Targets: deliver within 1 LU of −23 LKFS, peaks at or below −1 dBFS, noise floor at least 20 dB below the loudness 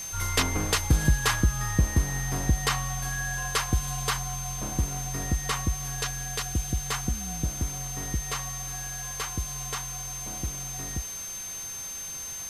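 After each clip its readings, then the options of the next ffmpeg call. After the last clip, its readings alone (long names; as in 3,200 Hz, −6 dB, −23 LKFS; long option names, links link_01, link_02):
interfering tone 6,300 Hz; level of the tone −35 dBFS; background noise floor −37 dBFS; target noise floor −49 dBFS; integrated loudness −29.0 LKFS; sample peak −8.5 dBFS; target loudness −23.0 LKFS
→ -af "bandreject=frequency=6300:width=30"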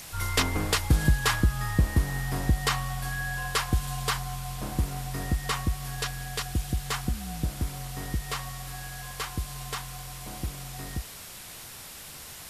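interfering tone none found; background noise floor −44 dBFS; target noise floor −50 dBFS
→ -af "afftdn=noise_reduction=6:noise_floor=-44"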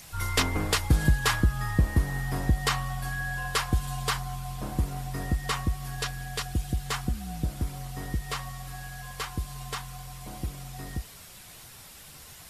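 background noise floor −48 dBFS; target noise floor −50 dBFS
→ -af "afftdn=noise_reduction=6:noise_floor=-48"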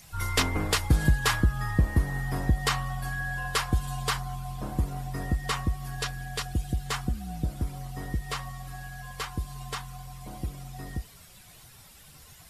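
background noise floor −52 dBFS; integrated loudness −30.0 LKFS; sample peak −8.5 dBFS; target loudness −23.0 LKFS
→ -af "volume=7dB"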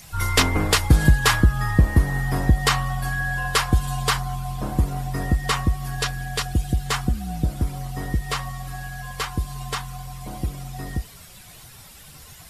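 integrated loudness −23.0 LKFS; sample peak −1.5 dBFS; background noise floor −45 dBFS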